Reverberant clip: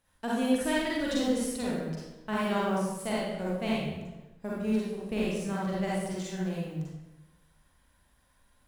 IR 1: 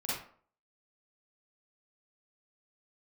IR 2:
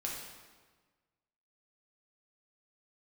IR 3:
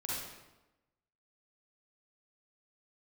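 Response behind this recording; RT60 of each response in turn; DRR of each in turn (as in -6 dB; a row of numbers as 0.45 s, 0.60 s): 3; 0.50 s, 1.4 s, 1.0 s; -9.0 dB, -3.0 dB, -7.0 dB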